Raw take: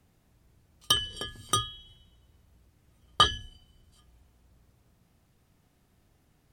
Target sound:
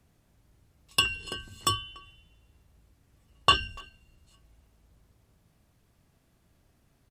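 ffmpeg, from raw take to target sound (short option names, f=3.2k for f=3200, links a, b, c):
-filter_complex "[0:a]asetrate=40517,aresample=44100,asplit=2[a][b];[b]adelay=290,highpass=300,lowpass=3.4k,asoftclip=type=hard:threshold=-17.5dB,volume=-22dB[c];[a][c]amix=inputs=2:normalize=0"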